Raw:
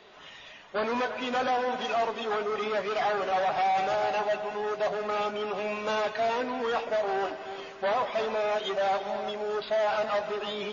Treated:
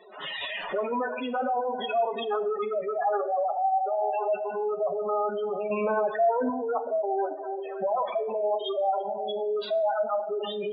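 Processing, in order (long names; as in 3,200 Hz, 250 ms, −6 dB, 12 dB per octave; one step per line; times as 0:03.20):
camcorder AGC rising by 50 dB per second
gate on every frequency bin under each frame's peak −10 dB strong
0:05.70–0:06.50: low-shelf EQ 460 Hz +8 dB
convolution reverb RT60 0.70 s, pre-delay 7 ms, DRR 10 dB
level +1.5 dB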